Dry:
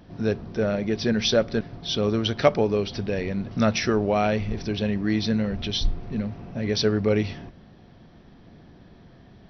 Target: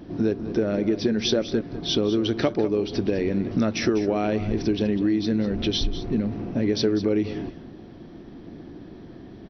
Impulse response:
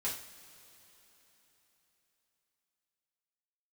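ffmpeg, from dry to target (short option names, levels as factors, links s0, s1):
-filter_complex "[0:a]equalizer=f=320:t=o:w=0.82:g=13,acompressor=threshold=0.0794:ratio=6,asplit=2[s0][s1];[s1]aecho=0:1:199:0.211[s2];[s0][s2]amix=inputs=2:normalize=0,volume=1.33"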